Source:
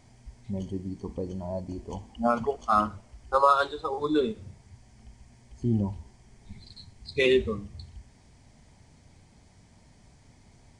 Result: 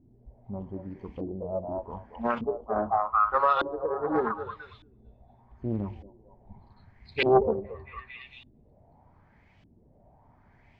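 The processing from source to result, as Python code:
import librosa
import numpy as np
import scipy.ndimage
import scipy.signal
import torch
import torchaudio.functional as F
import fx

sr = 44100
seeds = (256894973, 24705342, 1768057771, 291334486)

y = fx.echo_stepped(x, sr, ms=225, hz=750.0, octaves=0.7, feedback_pct=70, wet_db=-0.5)
y = fx.filter_lfo_lowpass(y, sr, shape='saw_up', hz=0.83, low_hz=290.0, high_hz=3100.0, q=3.1)
y = fx.doppler_dist(y, sr, depth_ms=0.63)
y = F.gain(torch.from_numpy(y), -4.5).numpy()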